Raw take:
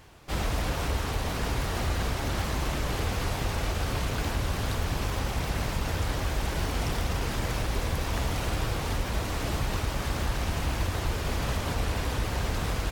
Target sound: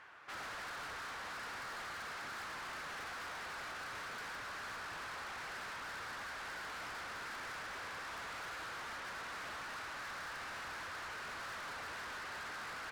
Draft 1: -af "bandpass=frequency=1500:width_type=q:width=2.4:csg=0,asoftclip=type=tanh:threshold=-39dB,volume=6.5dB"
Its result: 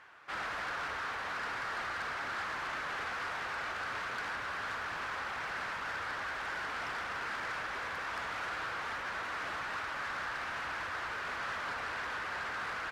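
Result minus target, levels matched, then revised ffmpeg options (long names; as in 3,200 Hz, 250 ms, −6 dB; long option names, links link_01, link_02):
soft clipping: distortion −8 dB
-af "bandpass=frequency=1500:width_type=q:width=2.4:csg=0,asoftclip=type=tanh:threshold=-50dB,volume=6.5dB"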